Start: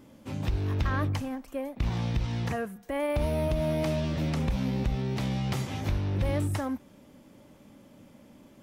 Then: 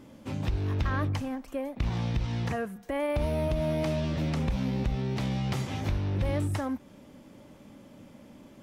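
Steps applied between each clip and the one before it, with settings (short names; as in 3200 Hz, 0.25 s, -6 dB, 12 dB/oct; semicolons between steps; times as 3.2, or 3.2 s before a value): high shelf 11000 Hz -7 dB; in parallel at -1.5 dB: compressor, threshold -36 dBFS, peak gain reduction 12.5 dB; on the sum: gain -2.5 dB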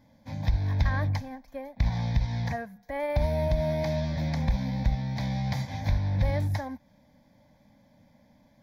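fixed phaser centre 1900 Hz, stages 8; upward expander 1.5:1, over -47 dBFS; gain +6 dB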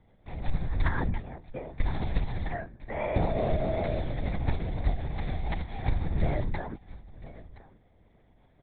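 echo 1.014 s -18.5 dB; LPC vocoder at 8 kHz whisper; gain -1 dB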